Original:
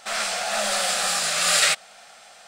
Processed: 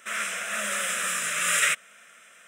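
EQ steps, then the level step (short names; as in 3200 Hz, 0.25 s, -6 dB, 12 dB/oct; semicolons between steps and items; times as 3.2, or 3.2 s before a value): HPF 190 Hz 12 dB/oct; fixed phaser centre 1900 Hz, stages 4; 0.0 dB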